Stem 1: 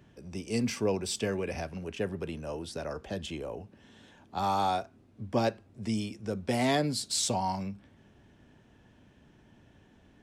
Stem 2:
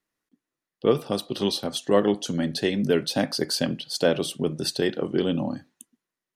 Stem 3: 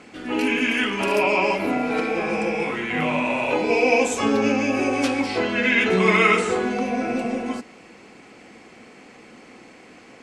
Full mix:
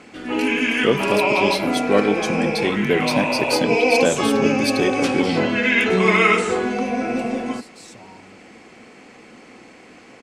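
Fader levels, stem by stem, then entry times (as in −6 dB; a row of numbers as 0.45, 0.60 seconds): −15.0, +2.0, +1.5 decibels; 0.65, 0.00, 0.00 seconds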